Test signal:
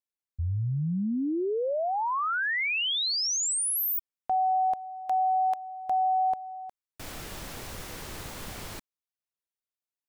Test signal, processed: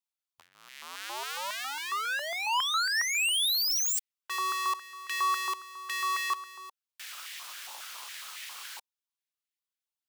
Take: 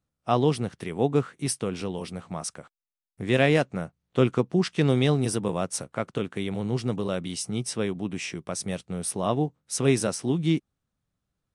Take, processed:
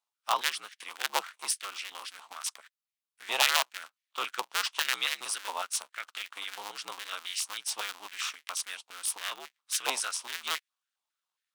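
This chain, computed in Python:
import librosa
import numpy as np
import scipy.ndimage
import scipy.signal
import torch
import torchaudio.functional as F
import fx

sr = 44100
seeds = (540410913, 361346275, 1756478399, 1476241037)

y = fx.cycle_switch(x, sr, every=2, mode='inverted')
y = fx.high_shelf_res(y, sr, hz=2300.0, db=7.0, q=1.5)
y = fx.filter_held_highpass(y, sr, hz=7.3, low_hz=910.0, high_hz=1900.0)
y = F.gain(torch.from_numpy(y), -8.0).numpy()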